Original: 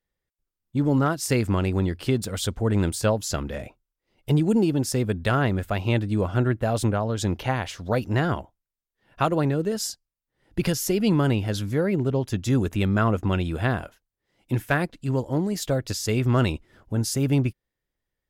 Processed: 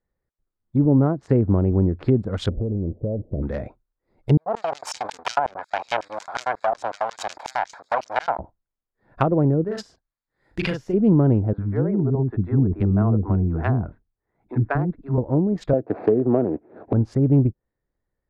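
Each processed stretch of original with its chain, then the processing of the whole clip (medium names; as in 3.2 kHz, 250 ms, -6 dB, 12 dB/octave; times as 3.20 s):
0.85–1.72 s: high-pass 45 Hz + treble shelf 3 kHz -5.5 dB
2.49–3.43 s: jump at every zero crossing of -33 dBFS + steep low-pass 590 Hz 48 dB/octave + compression 16:1, threshold -25 dBFS
4.37–8.39 s: comb filter that takes the minimum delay 1.3 ms + LFO high-pass square 5.5 Hz 850–5900 Hz + decay stretcher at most 140 dB/s
9.64–10.94 s: tilt shelf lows -8.5 dB, about 1.2 kHz + doubling 39 ms -4 dB
11.53–15.18 s: distance through air 490 m + band-stop 540 Hz, Q 6.5 + bands offset in time highs, lows 50 ms, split 360 Hz
15.73–16.93 s: median filter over 25 samples + cabinet simulation 250–3200 Hz, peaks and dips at 300 Hz +4 dB, 440 Hz +6 dB, 700 Hz +8 dB, 1.1 kHz -4 dB, 1.7 kHz +5 dB, 2.7 kHz +7 dB + three bands compressed up and down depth 100%
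whole clip: local Wiener filter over 15 samples; low-pass that closes with the level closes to 650 Hz, closed at -20.5 dBFS; trim +5 dB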